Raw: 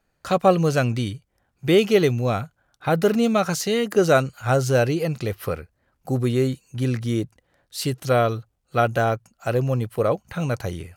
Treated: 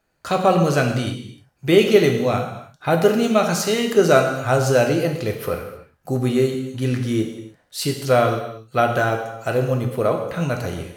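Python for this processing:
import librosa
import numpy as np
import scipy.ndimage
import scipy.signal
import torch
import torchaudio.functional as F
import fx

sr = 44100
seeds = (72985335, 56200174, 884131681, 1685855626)

y = fx.low_shelf(x, sr, hz=110.0, db=-5.5)
y = fx.rev_gated(y, sr, seeds[0], gate_ms=340, shape='falling', drr_db=2.5)
y = F.gain(torch.from_numpy(y), 1.5).numpy()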